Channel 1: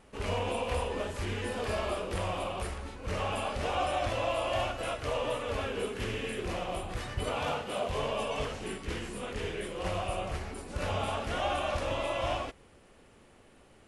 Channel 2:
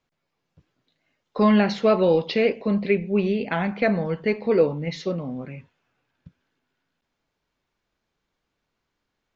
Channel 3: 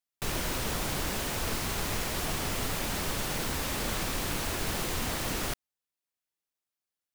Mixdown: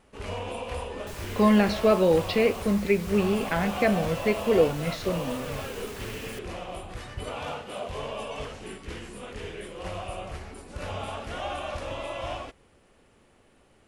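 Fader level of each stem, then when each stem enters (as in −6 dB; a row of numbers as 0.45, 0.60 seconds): −2.0, −2.0, −10.5 decibels; 0.00, 0.00, 0.85 seconds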